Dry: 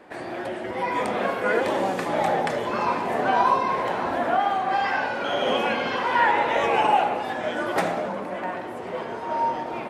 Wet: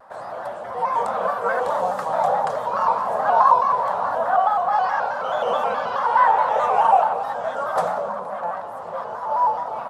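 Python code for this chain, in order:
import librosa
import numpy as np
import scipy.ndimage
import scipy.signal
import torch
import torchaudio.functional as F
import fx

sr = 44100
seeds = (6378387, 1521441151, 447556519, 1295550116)

y = fx.dmg_crackle(x, sr, seeds[0], per_s=200.0, level_db=-50.0, at=(2.03, 3.31), fade=0.02)
y = fx.curve_eq(y, sr, hz=(190.0, 350.0, 510.0, 1200.0, 2200.0, 4100.0, 11000.0), db=(0, -14, 7, 13, -8, 1, 4))
y = fx.vibrato_shape(y, sr, shape='square', rate_hz=4.7, depth_cents=100.0)
y = F.gain(torch.from_numpy(y), -6.0).numpy()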